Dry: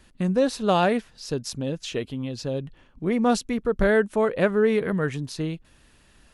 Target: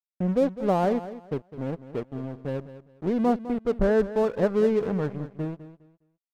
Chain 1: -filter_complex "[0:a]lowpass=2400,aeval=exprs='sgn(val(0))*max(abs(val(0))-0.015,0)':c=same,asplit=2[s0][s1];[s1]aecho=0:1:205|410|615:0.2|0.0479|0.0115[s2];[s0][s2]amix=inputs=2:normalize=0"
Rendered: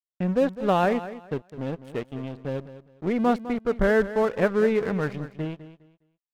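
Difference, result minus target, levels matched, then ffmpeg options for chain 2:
2 kHz band +8.0 dB
-filter_complex "[0:a]lowpass=850,aeval=exprs='sgn(val(0))*max(abs(val(0))-0.015,0)':c=same,asplit=2[s0][s1];[s1]aecho=0:1:205|410|615:0.2|0.0479|0.0115[s2];[s0][s2]amix=inputs=2:normalize=0"

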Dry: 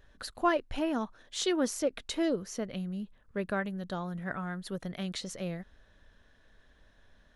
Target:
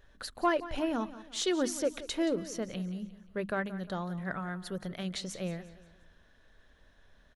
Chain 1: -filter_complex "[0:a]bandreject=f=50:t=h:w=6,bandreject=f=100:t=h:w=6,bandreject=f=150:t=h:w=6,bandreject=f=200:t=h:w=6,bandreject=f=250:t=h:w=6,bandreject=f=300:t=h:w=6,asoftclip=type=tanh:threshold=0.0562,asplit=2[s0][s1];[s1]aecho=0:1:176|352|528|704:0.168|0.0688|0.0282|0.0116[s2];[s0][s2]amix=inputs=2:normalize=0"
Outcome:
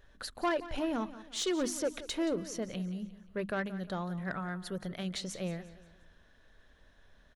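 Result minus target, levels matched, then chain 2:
saturation: distortion +12 dB
-filter_complex "[0:a]bandreject=f=50:t=h:w=6,bandreject=f=100:t=h:w=6,bandreject=f=150:t=h:w=6,bandreject=f=200:t=h:w=6,bandreject=f=250:t=h:w=6,bandreject=f=300:t=h:w=6,asoftclip=type=tanh:threshold=0.158,asplit=2[s0][s1];[s1]aecho=0:1:176|352|528|704:0.168|0.0688|0.0282|0.0116[s2];[s0][s2]amix=inputs=2:normalize=0"

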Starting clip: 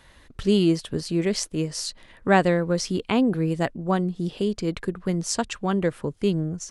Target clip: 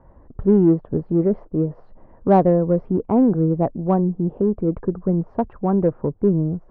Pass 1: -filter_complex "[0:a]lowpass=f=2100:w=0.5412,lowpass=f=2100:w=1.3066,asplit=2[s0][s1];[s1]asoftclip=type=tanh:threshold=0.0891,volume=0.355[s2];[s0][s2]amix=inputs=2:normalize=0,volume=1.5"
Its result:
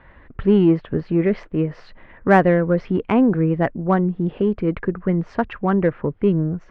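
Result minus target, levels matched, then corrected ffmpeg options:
2 kHz band +18.0 dB
-filter_complex "[0:a]lowpass=f=940:w=0.5412,lowpass=f=940:w=1.3066,asplit=2[s0][s1];[s1]asoftclip=type=tanh:threshold=0.0891,volume=0.355[s2];[s0][s2]amix=inputs=2:normalize=0,volume=1.5"

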